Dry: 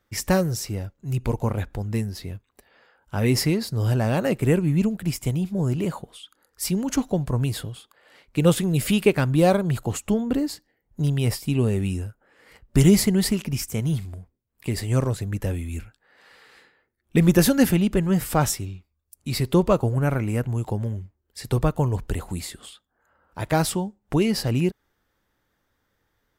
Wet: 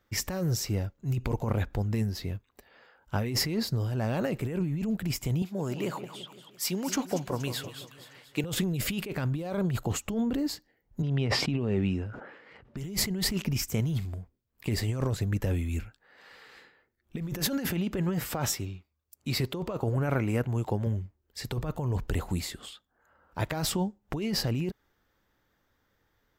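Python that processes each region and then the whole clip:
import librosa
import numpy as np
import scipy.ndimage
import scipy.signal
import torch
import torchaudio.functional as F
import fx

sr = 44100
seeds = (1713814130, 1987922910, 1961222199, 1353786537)

y = fx.chain(x, sr, fx.highpass(hz=500.0, slope=6),
    fx.echo_split(split_hz=2500.0, low_ms=171, high_ms=236, feedback_pct=52, wet_db=-11.5), at=(5.42, 8.44))
y = fx.chain(y, sr, fx.bandpass_edges(low_hz=120.0, high_hz=3100.0),
    fx.sustainer(db_per_s=56.0), at=(11.02, 12.77))
y = fx.chain(y, sr, fx.highpass(hz=52.0, slope=12),
    fx.bass_treble(bass_db=-4, treble_db=-2), at=(17.4, 20.87))
y = fx.peak_eq(y, sr, hz=9600.0, db=-10.5, octaves=0.36)
y = fx.over_compress(y, sr, threshold_db=-25.0, ratio=-1.0)
y = F.gain(torch.from_numpy(y), -3.5).numpy()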